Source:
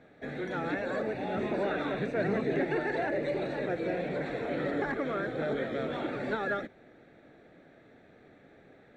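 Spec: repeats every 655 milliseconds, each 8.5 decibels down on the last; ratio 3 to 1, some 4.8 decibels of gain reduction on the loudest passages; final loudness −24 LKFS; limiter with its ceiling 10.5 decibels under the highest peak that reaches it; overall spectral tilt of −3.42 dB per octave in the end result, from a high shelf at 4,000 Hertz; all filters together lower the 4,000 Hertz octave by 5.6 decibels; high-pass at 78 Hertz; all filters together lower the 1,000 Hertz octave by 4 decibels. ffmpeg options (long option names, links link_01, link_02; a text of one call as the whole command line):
ffmpeg -i in.wav -af "highpass=78,equalizer=frequency=1000:width_type=o:gain=-5.5,highshelf=frequency=4000:gain=-5.5,equalizer=frequency=4000:width_type=o:gain=-3.5,acompressor=threshold=-33dB:ratio=3,alimiter=level_in=10.5dB:limit=-24dB:level=0:latency=1,volume=-10.5dB,aecho=1:1:655|1310|1965|2620:0.376|0.143|0.0543|0.0206,volume=18dB" out.wav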